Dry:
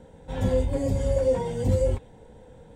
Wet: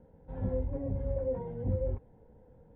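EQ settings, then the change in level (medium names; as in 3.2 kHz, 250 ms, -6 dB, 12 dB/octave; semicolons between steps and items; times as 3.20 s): dynamic bell 3.2 kHz, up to -5 dB, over -55 dBFS, Q 1.4; distance through air 400 m; tape spacing loss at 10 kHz 35 dB; -7.5 dB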